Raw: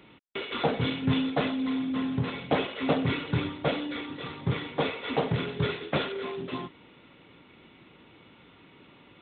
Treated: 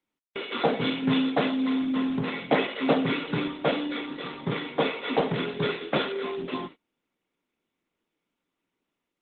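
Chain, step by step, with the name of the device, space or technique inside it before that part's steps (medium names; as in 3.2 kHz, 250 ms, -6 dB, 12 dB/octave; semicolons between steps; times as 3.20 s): 2.26–2.77 s: dynamic bell 2 kHz, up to +7 dB, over -52 dBFS, Q 6.2; video call (high-pass 170 Hz 24 dB/octave; level rider gain up to 3.5 dB; gate -41 dBFS, range -30 dB; Opus 32 kbps 48 kHz)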